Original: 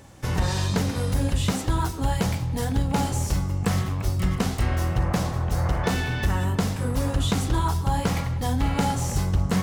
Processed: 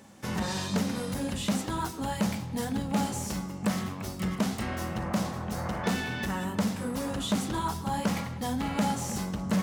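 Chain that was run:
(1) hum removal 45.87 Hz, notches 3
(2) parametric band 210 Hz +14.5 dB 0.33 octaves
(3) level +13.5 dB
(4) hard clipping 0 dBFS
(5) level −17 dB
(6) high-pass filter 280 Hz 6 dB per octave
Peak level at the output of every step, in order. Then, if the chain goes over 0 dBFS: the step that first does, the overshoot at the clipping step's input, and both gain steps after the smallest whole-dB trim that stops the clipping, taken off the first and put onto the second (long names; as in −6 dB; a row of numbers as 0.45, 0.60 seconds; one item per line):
−11.5, −4.5, +9.0, 0.0, −17.0, −14.0 dBFS
step 3, 9.0 dB
step 3 +4.5 dB, step 5 −8 dB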